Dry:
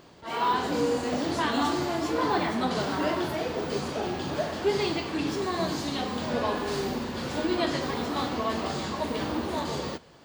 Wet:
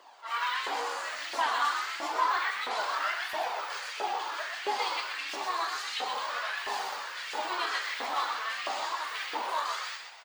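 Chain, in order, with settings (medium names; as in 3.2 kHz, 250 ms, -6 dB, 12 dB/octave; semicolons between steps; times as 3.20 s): steep high-pass 190 Hz 96 dB/octave; in parallel at -3 dB: gain riding within 4 dB 2 s; on the sum: flange 1.5 Hz, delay 0.6 ms, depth 1.9 ms, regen -53%; Chebyshev shaper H 8 -26 dB, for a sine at -12.5 dBFS; LFO high-pass saw up 1.5 Hz 680–2400 Hz; flange 0.3 Hz, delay 1 ms, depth 3.2 ms, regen +53%; on a send: frequency-shifting echo 125 ms, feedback 42%, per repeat +75 Hz, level -6 dB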